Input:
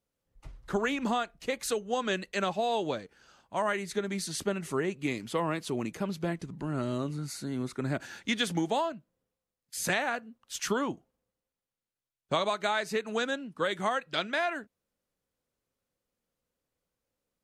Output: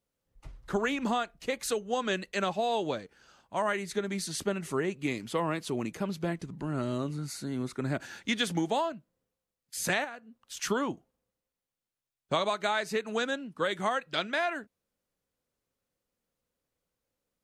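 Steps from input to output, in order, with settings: 10.04–10.57 compressor 6:1, threshold -40 dBFS, peak gain reduction 12 dB

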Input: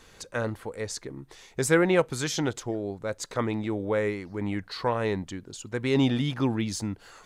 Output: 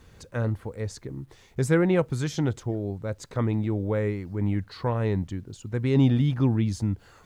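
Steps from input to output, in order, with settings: high shelf 3000 Hz -4.5 dB; bit-crush 11-bit; bell 82 Hz +14 dB 2.9 oct; gain -4 dB

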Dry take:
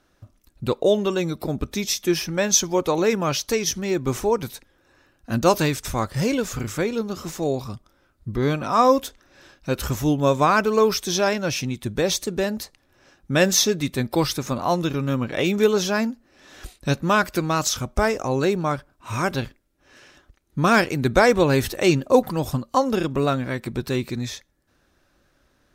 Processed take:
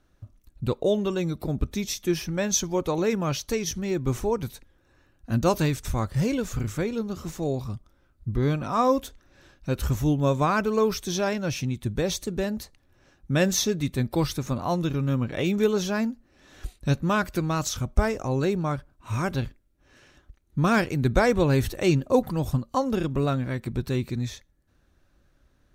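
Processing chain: low shelf 170 Hz +12 dB; notch 5100 Hz, Q 18; gain -6.5 dB

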